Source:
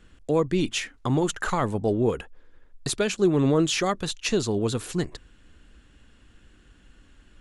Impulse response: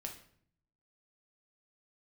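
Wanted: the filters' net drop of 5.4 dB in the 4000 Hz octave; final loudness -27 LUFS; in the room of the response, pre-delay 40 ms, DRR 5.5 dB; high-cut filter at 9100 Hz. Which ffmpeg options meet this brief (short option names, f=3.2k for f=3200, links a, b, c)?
-filter_complex "[0:a]lowpass=9.1k,equalizer=f=4k:t=o:g=-7,asplit=2[a][b];[1:a]atrim=start_sample=2205,adelay=40[c];[b][c]afir=irnorm=-1:irlink=0,volume=-3dB[d];[a][d]amix=inputs=2:normalize=0,volume=-2.5dB"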